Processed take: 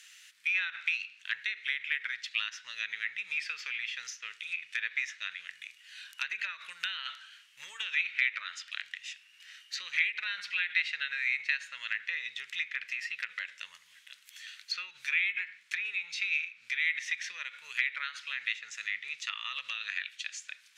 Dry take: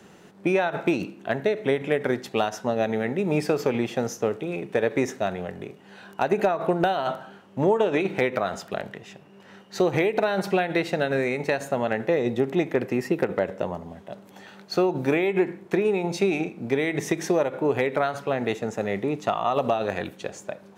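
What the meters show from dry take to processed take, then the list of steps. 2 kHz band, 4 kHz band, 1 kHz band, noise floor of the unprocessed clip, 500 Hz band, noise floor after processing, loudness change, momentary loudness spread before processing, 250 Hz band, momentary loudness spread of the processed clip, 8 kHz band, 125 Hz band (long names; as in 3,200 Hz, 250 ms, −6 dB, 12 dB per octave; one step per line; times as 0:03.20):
+1.0 dB, +2.0 dB, −21.5 dB, −50 dBFS, below −40 dB, −60 dBFS, −8.0 dB, 11 LU, below −40 dB, 16 LU, −5.0 dB, below −40 dB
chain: inverse Chebyshev high-pass filter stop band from 790 Hz, stop band 50 dB
treble cut that deepens with the level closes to 2,900 Hz, closed at −36.5 dBFS
level +6 dB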